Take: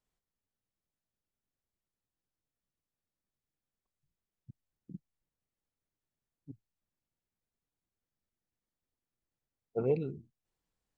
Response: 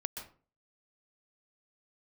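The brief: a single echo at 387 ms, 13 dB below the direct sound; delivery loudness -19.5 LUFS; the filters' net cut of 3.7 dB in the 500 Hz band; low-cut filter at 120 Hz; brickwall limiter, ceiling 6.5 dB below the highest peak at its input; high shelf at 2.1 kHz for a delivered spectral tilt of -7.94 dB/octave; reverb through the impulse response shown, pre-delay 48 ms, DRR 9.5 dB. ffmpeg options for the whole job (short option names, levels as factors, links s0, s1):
-filter_complex "[0:a]highpass=120,equalizer=f=500:t=o:g=-4.5,highshelf=f=2100:g=5,alimiter=level_in=1.41:limit=0.0631:level=0:latency=1,volume=0.708,aecho=1:1:387:0.224,asplit=2[s0][s1];[1:a]atrim=start_sample=2205,adelay=48[s2];[s1][s2]afir=irnorm=-1:irlink=0,volume=0.316[s3];[s0][s3]amix=inputs=2:normalize=0,volume=15.8"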